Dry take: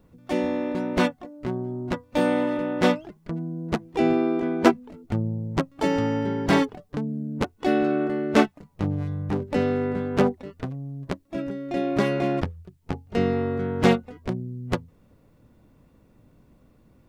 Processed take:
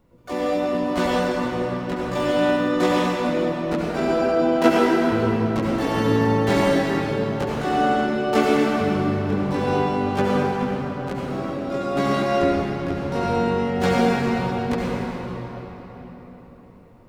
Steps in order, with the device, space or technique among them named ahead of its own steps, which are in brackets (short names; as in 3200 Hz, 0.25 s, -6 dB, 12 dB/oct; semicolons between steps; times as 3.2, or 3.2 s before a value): shimmer-style reverb (harmoniser +12 st -5 dB; reverb RT60 4.7 s, pre-delay 65 ms, DRR -6 dB); gain -4.5 dB